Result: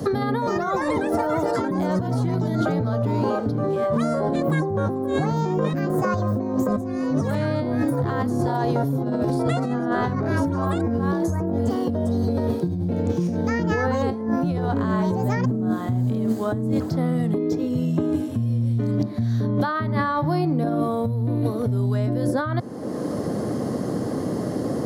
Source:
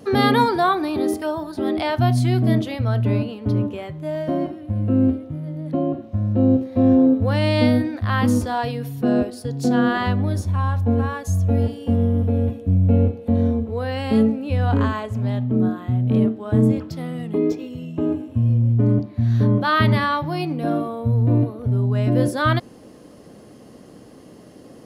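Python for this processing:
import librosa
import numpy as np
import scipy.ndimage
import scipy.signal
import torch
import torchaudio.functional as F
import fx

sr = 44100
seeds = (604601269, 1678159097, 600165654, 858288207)

y = scipy.signal.sosfilt(scipy.signal.butter(4, 93.0, 'highpass', fs=sr, output='sos'), x)
y = fx.echo_pitch(y, sr, ms=374, semitones=7, count=2, db_per_echo=-3.0)
y = fx.peak_eq(y, sr, hz=2700.0, db=-13.5, octaves=0.62)
y = fx.over_compress(y, sr, threshold_db=-24.0, ratio=-1.0)
y = fx.high_shelf(y, sr, hz=3900.0, db=-7.0)
y = fx.band_squash(y, sr, depth_pct=100)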